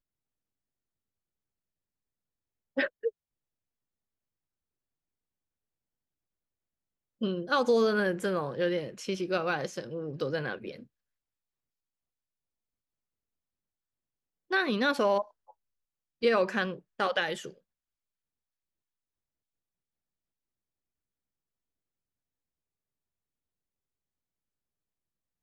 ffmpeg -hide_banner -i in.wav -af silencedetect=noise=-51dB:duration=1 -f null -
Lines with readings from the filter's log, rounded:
silence_start: 0.00
silence_end: 2.77 | silence_duration: 2.77
silence_start: 3.10
silence_end: 7.21 | silence_duration: 4.11
silence_start: 10.84
silence_end: 14.51 | silence_duration: 3.66
silence_start: 17.58
silence_end: 25.42 | silence_duration: 7.84